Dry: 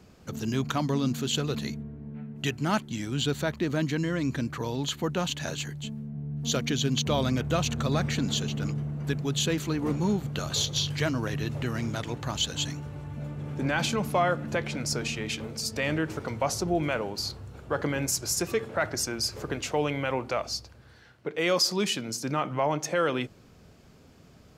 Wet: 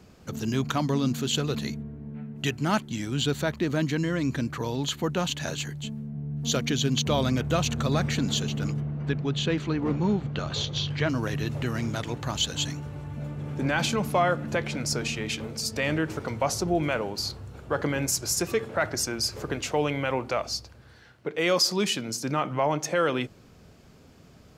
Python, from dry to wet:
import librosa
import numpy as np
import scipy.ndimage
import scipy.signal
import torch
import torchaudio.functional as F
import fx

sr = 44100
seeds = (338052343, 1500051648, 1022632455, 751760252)

y = fx.lowpass(x, sr, hz=3600.0, slope=12, at=(8.8, 11.08), fade=0.02)
y = F.gain(torch.from_numpy(y), 1.5).numpy()